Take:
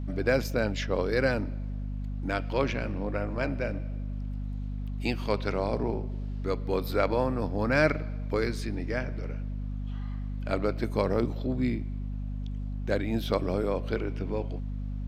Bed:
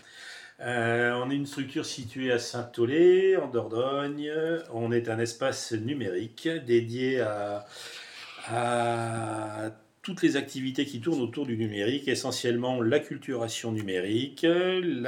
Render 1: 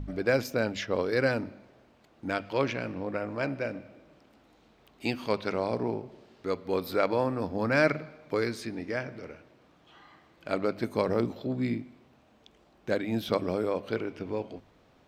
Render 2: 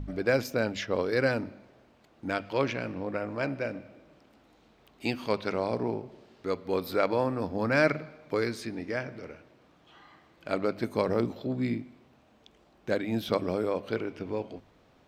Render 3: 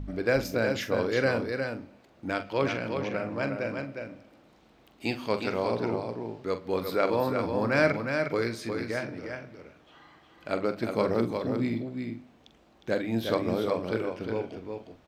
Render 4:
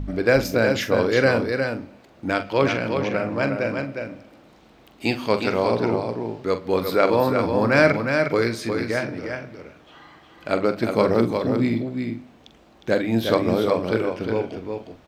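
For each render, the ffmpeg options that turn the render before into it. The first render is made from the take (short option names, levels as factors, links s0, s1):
-af "bandreject=f=50:t=h:w=4,bandreject=f=100:t=h:w=4,bandreject=f=150:t=h:w=4,bandreject=f=200:t=h:w=4,bandreject=f=250:t=h:w=4"
-af anull
-filter_complex "[0:a]asplit=2[s0][s1];[s1]adelay=44,volume=0.299[s2];[s0][s2]amix=inputs=2:normalize=0,asplit=2[s3][s4];[s4]aecho=0:1:359:0.531[s5];[s3][s5]amix=inputs=2:normalize=0"
-af "volume=2.37,alimiter=limit=0.708:level=0:latency=1"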